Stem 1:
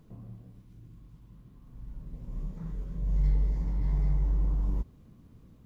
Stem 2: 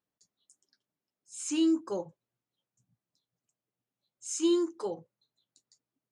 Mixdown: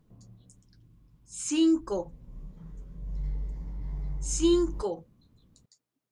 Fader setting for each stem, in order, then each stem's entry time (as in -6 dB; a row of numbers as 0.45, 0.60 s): -7.5, +3.0 dB; 0.00, 0.00 s